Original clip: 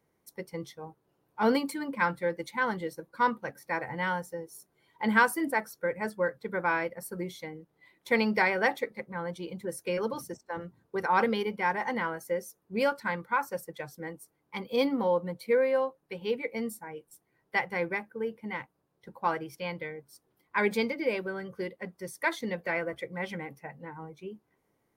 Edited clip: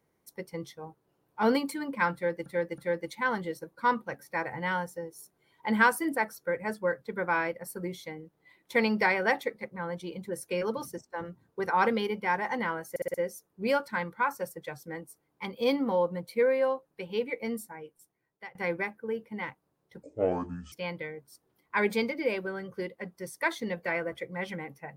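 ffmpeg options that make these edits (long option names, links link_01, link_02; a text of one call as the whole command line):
ffmpeg -i in.wav -filter_complex "[0:a]asplit=10[link_01][link_02][link_03][link_04][link_05][link_06][link_07][link_08][link_09][link_10];[link_01]atrim=end=2.462[link_11];[link_02]atrim=start=2.138:end=2.462[link_12];[link_03]atrim=start=2.138:end=12.322[link_13];[link_04]atrim=start=12.258:end=12.322[link_14];[link_05]atrim=start=12.258:end=12.322[link_15];[link_06]atrim=start=12.258:end=12.322[link_16];[link_07]atrim=start=12.258:end=17.67,asetpts=PTS-STARTPTS,afade=type=out:start_time=4.432:duration=0.98:silence=0.0707946[link_17];[link_08]atrim=start=17.67:end=19.154,asetpts=PTS-STARTPTS,afade=type=in:duration=0.004:curve=hsin:silence=0.0707946[link_18];[link_09]atrim=start=19.15:end=19.53,asetpts=PTS-STARTPTS,asetrate=24255,aresample=44100,atrim=end_sample=30469,asetpts=PTS-STARTPTS[link_19];[link_10]atrim=start=19.526[link_20];[link_11][link_12]acrossfade=duration=0.004:curve1=hsin:curve2=hsin[link_21];[link_21][link_13]acrossfade=duration=0.004:curve1=hsin:curve2=hsin[link_22];[link_22][link_14]acrossfade=duration=0.004:curve1=hsin:curve2=hsin[link_23];[link_23][link_15]acrossfade=duration=0.004:curve1=hsin:curve2=hsin[link_24];[link_24][link_16]acrossfade=duration=0.004:curve1=hsin:curve2=hsin[link_25];[link_17][link_18]concat=n=2:v=0:a=1[link_26];[link_25][link_26]acrossfade=duration=0.004:curve1=hsin:curve2=hsin[link_27];[link_27][link_19]acrossfade=duration=0.004:curve1=hsin:curve2=hsin[link_28];[link_28][link_20]acrossfade=duration=0.004:curve1=hsin:curve2=hsin" out.wav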